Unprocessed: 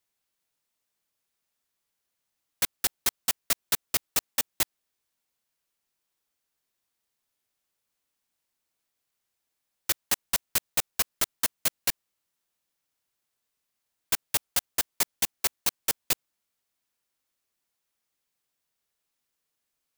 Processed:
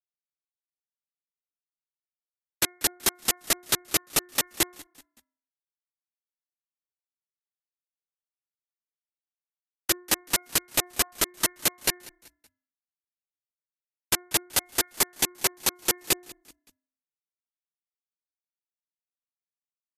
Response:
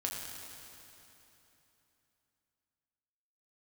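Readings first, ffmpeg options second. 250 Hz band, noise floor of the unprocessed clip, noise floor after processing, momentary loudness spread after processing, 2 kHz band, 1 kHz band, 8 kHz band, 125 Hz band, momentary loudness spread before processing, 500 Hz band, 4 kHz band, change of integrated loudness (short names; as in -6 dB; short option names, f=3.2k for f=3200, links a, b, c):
+8.5 dB, -82 dBFS, under -85 dBFS, 3 LU, +3.5 dB, +4.0 dB, +4.0 dB, +4.0 dB, 3 LU, +7.0 dB, +3.5 dB, +2.0 dB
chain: -filter_complex "[0:a]aeval=exprs='val(0)*gte(abs(val(0)),0.0447)':c=same,equalizer=f=350:t=o:w=0.47:g=9.5,bandreject=f=357.6:t=h:w=4,bandreject=f=715.2:t=h:w=4,bandreject=f=1.0728k:t=h:w=4,bandreject=f=1.4304k:t=h:w=4,bandreject=f=1.788k:t=h:w=4,bandreject=f=2.1456k:t=h:w=4,asplit=2[a][b];[b]asplit=3[c][d][e];[c]adelay=189,afreqshift=-32,volume=-22dB[f];[d]adelay=378,afreqshift=-64,volume=-29.5dB[g];[e]adelay=567,afreqshift=-96,volume=-37.1dB[h];[f][g][h]amix=inputs=3:normalize=0[i];[a][i]amix=inputs=2:normalize=0,volume=4dB" -ar 32000 -c:a libvorbis -b:a 64k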